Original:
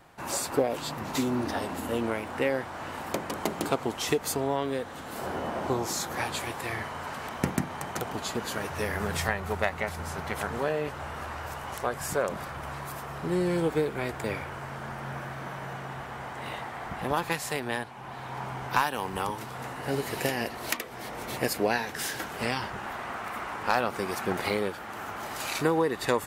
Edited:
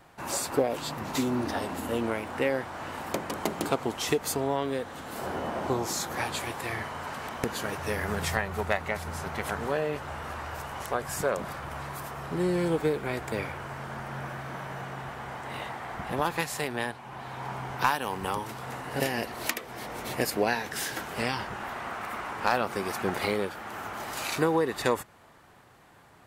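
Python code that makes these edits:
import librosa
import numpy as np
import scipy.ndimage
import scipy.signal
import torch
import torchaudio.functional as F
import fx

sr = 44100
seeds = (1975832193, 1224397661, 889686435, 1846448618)

y = fx.edit(x, sr, fx.cut(start_s=7.44, length_s=0.92),
    fx.cut(start_s=19.92, length_s=0.31), tone=tone)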